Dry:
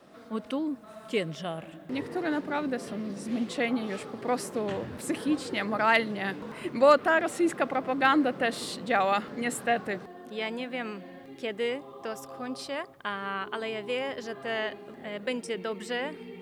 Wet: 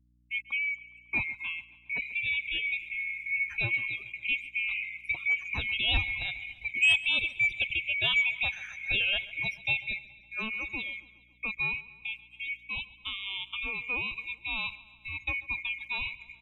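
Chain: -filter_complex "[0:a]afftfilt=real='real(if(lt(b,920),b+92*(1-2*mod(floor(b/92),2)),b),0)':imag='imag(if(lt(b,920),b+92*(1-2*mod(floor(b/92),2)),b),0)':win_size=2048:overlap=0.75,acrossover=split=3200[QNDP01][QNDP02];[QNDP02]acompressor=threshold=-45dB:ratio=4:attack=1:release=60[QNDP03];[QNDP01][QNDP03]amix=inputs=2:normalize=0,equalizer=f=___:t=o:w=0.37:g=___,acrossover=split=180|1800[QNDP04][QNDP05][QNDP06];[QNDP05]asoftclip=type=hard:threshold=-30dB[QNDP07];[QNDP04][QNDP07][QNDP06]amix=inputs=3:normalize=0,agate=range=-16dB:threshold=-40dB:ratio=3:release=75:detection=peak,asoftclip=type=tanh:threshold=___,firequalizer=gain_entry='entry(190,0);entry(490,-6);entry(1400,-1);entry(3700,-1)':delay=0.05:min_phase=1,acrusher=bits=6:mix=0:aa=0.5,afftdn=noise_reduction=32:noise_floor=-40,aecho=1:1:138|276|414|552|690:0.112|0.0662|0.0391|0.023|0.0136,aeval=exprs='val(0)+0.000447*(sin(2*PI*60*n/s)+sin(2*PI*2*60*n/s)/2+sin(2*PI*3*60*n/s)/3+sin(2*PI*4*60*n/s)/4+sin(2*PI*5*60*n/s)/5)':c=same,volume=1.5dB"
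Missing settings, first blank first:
170, -9, -15.5dB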